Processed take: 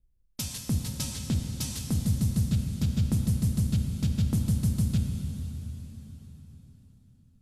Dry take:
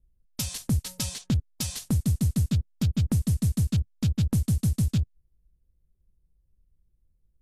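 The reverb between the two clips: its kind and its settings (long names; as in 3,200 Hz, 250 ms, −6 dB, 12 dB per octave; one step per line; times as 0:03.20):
dense smooth reverb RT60 4.7 s, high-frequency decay 0.85×, DRR 3 dB
level −3.5 dB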